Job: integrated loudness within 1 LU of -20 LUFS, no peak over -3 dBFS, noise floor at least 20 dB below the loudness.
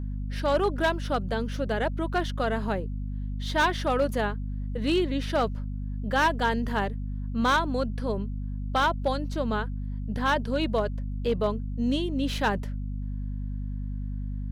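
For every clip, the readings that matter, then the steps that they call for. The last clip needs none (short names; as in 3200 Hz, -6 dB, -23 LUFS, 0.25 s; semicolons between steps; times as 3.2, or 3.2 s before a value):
clipped 0.5%; flat tops at -17.0 dBFS; hum 50 Hz; harmonics up to 250 Hz; hum level -29 dBFS; loudness -28.5 LUFS; peak -17.0 dBFS; loudness target -20.0 LUFS
-> clip repair -17 dBFS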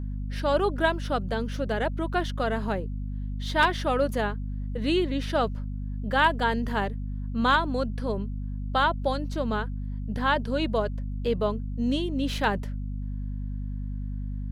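clipped 0.0%; hum 50 Hz; harmonics up to 250 Hz; hum level -29 dBFS
-> de-hum 50 Hz, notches 5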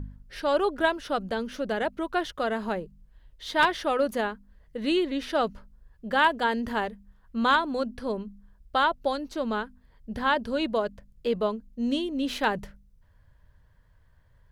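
hum none; loudness -28.0 LUFS; peak -8.0 dBFS; loudness target -20.0 LUFS
-> gain +8 dB; limiter -3 dBFS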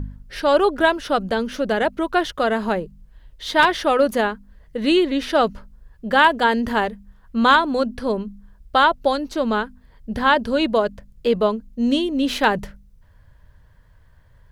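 loudness -20.0 LUFS; peak -3.0 dBFS; noise floor -52 dBFS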